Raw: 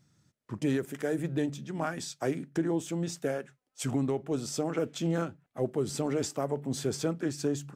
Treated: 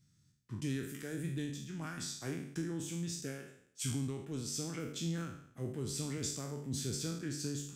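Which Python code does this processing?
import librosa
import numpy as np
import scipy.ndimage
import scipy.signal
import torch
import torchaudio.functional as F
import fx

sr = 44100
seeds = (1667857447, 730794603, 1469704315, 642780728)

y = fx.spec_trails(x, sr, decay_s=0.66)
y = fx.tone_stack(y, sr, knobs='6-0-2')
y = y * librosa.db_to_amplitude(10.5)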